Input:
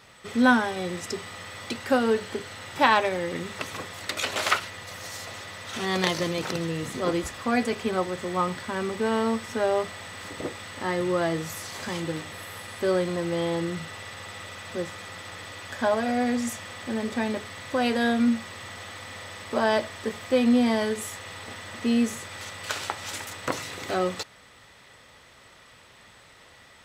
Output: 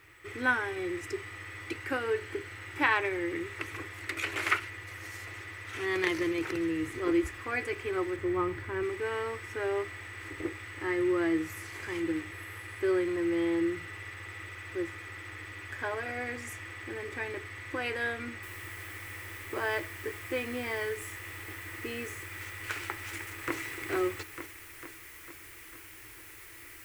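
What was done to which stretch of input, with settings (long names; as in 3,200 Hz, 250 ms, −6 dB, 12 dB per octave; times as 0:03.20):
0:08.16–0:08.83: spectral tilt −2 dB per octave
0:18.43: noise floor change −64 dB −43 dB
0:22.93–0:23.56: delay throw 450 ms, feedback 60%, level −5 dB
whole clip: drawn EQ curve 110 Hz 0 dB, 220 Hz −29 dB, 320 Hz +5 dB, 580 Hz −16 dB, 2,200 Hz +1 dB, 3,700 Hz −14 dB, 6,800 Hz −12 dB, 9,800 Hz −8 dB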